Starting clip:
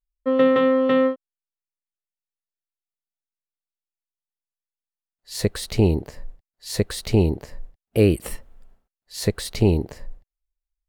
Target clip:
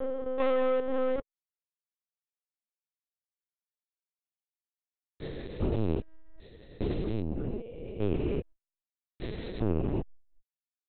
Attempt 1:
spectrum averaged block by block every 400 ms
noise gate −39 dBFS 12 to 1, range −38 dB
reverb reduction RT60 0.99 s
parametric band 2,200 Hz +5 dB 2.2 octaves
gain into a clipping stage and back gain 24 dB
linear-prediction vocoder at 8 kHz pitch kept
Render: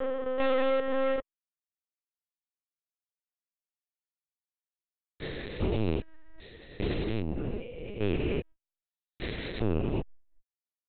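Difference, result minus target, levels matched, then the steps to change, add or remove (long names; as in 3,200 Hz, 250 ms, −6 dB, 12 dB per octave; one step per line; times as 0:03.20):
2,000 Hz band +6.0 dB
change: parametric band 2,200 Hz −5 dB 2.2 octaves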